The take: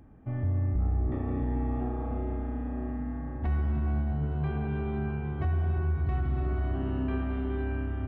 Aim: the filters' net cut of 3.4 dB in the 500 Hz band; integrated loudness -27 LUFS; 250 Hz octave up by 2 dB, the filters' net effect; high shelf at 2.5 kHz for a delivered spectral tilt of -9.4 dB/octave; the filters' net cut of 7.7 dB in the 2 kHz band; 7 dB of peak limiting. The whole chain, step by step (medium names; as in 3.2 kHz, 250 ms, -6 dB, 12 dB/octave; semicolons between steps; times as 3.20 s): peaking EQ 250 Hz +4 dB; peaking EQ 500 Hz -6.5 dB; peaking EQ 2 kHz -7 dB; treble shelf 2.5 kHz -8.5 dB; trim +8 dB; peak limiter -19.5 dBFS